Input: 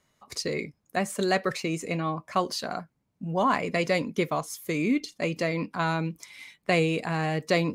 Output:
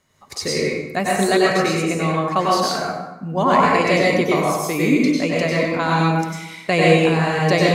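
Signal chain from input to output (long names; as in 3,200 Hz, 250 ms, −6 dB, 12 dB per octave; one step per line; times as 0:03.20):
dense smooth reverb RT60 1 s, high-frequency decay 0.65×, pre-delay 85 ms, DRR −4.5 dB
level +4.5 dB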